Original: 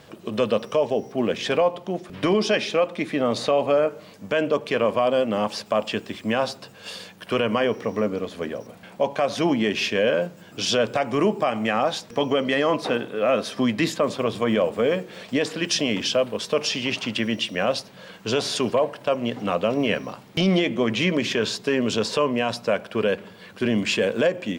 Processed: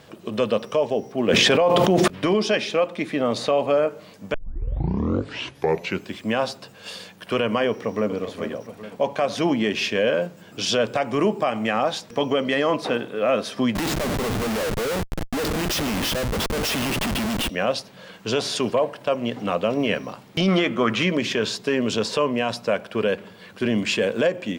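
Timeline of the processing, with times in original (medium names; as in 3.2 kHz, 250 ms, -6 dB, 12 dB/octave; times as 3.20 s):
1.28–2.08 s: level flattener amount 100%
4.34 s: tape start 1.84 s
7.68–8.13 s: echo throw 410 ms, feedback 55%, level -10.5 dB
13.75–17.49 s: Schmitt trigger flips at -31.5 dBFS
20.48–21.03 s: peaking EQ 1.3 kHz +15 dB 0.56 oct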